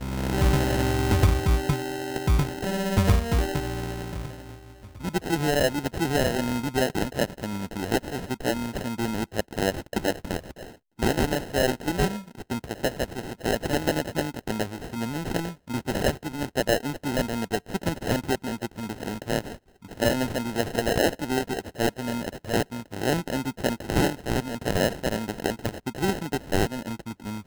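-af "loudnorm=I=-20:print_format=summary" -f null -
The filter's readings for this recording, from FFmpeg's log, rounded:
Input Integrated:    -27.4 LUFS
Input True Peak:      -8.4 dBTP
Input LRA:             4.1 LU
Input Threshold:     -37.6 LUFS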